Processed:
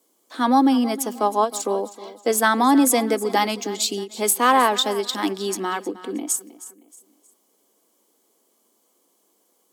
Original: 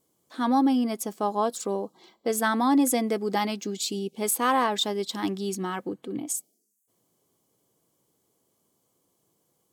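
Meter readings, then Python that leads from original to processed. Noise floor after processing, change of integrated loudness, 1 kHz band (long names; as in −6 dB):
−66 dBFS, +6.0 dB, +7.0 dB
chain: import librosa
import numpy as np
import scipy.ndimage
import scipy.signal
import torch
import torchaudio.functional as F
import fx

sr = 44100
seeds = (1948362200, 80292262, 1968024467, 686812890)

y = scipy.signal.sosfilt(scipy.signal.butter(8, 210.0, 'highpass', fs=sr, output='sos'), x)
y = fx.low_shelf(y, sr, hz=350.0, db=-4.5)
y = fx.echo_feedback(y, sr, ms=314, feedback_pct=36, wet_db=-16.5)
y = fx.end_taper(y, sr, db_per_s=300.0)
y = y * librosa.db_to_amplitude(7.5)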